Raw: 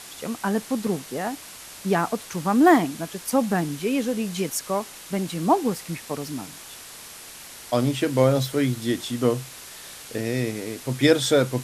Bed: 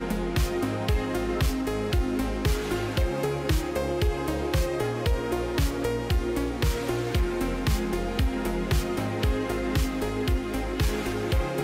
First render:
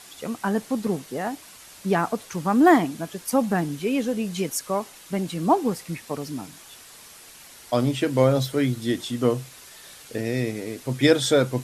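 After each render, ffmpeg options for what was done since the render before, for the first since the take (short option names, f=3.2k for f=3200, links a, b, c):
-af "afftdn=nr=6:nf=-42"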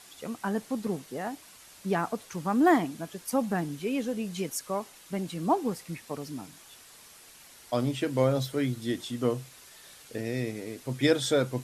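-af "volume=-6dB"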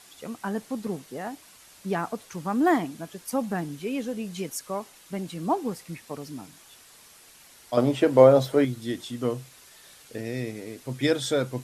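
-filter_complex "[0:a]asettb=1/sr,asplit=3[a][b][c];[a]atrim=end=7.774[d];[b]atrim=start=7.77:end=8.65,asetpts=PTS-STARTPTS,afade=t=in:d=0.004:c=qsin,afade=t=out:st=0.876:d=0.004:c=qsin,equalizer=f=640:t=o:w=2.4:g=12.5[e];[c]atrim=start=8.646[f];[d][e]acrossfade=d=0.004:c1=hsin:c2=qsin[g];[g][f]acrossfade=d=0.004:c1=qsin:c2=hsin"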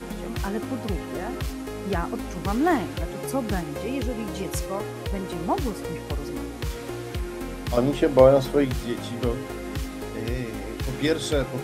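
-filter_complex "[1:a]volume=-5.5dB[a];[0:a][a]amix=inputs=2:normalize=0"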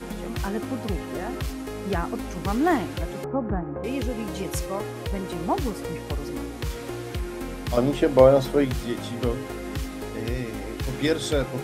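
-filter_complex "[0:a]asettb=1/sr,asplit=3[a][b][c];[a]atrim=end=3.244[d];[b]atrim=start=3.24:end=3.84,asetpts=PTS-STARTPTS,afade=t=in:d=0.004:c=qsin,afade=t=out:st=0.596:d=0.004:c=qsin,lowpass=f=1.4k:w=0.5412,lowpass=f=1.4k:w=1.3066[e];[c]atrim=start=3.836[f];[d][e]acrossfade=d=0.004:c1=hsin:c2=qsin[g];[g][f]acrossfade=d=0.004:c1=qsin:c2=hsin"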